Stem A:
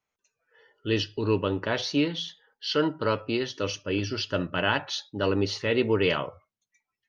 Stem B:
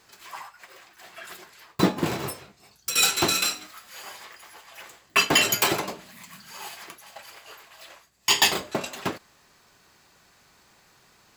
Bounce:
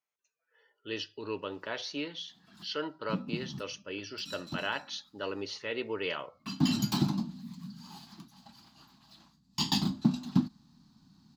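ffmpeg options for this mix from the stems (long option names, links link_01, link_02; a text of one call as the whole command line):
ffmpeg -i stem1.wav -i stem2.wav -filter_complex "[0:a]highpass=frequency=490:poles=1,volume=-7.5dB,asplit=2[link_01][link_02];[1:a]firequalizer=gain_entry='entry(100,0);entry(150,10);entry(250,12);entry(450,-30);entry(820,-10);entry(2100,-24);entry(4100,-5);entry(7900,-20)':delay=0.05:min_phase=1,adelay=1300,volume=0dB[link_03];[link_02]apad=whole_len=563113[link_04];[link_03][link_04]sidechaincompress=threshold=-52dB:ratio=5:attack=8:release=390[link_05];[link_01][link_05]amix=inputs=2:normalize=0" out.wav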